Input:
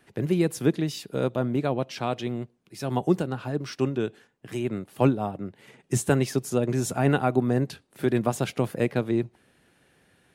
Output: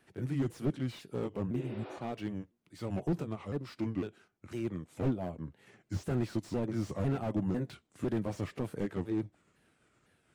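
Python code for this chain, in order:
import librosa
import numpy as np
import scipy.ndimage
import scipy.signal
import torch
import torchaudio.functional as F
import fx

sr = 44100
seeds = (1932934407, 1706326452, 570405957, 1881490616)

y = fx.pitch_ramps(x, sr, semitones=-5.0, every_ms=503)
y = fx.spec_repair(y, sr, seeds[0], start_s=1.59, length_s=0.37, low_hz=260.0, high_hz=5700.0, source='both')
y = fx.slew_limit(y, sr, full_power_hz=29.0)
y = y * 10.0 ** (-6.5 / 20.0)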